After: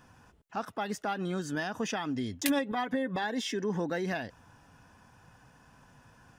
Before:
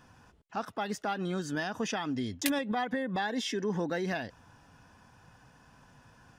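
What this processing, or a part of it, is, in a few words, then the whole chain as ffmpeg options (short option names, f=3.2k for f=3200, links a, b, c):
exciter from parts: -filter_complex "[0:a]asplit=2[a][b];[b]highpass=3.9k,asoftclip=type=tanh:threshold=-38dB,highpass=3.6k,volume=-9dB[c];[a][c]amix=inputs=2:normalize=0,asettb=1/sr,asplit=3[d][e][f];[d]atrim=end=2.484[g];[e]atrim=start=2.48:end=3.24,asetpts=PTS-STARTPTS,afade=t=in:d=0.004:c=qsin,afade=t=out:st=0.756:d=0.004:c=qsin,aecho=1:1:7.2:0.46,atrim=end_sample=33516[h];[f]atrim=start=3.236[i];[g][h]acrossfade=d=0.004:c1=hsin:c2=qsin[j];[j][i]acrossfade=d=0.004:c1=qsin:c2=hsin"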